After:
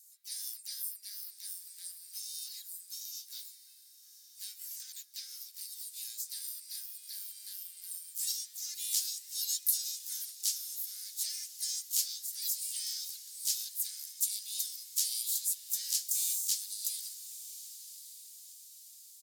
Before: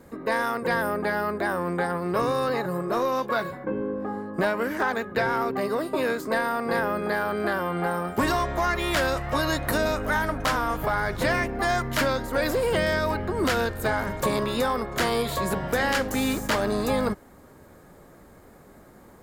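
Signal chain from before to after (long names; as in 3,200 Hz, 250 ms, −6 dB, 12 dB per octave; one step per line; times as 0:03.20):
inverse Chebyshev high-pass filter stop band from 970 Hz, stop band 80 dB
pitch-shifted copies added −3 semitones −14 dB, +3 semitones −6 dB
feedback delay with all-pass diffusion 1,149 ms, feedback 46%, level −14 dB
level +6 dB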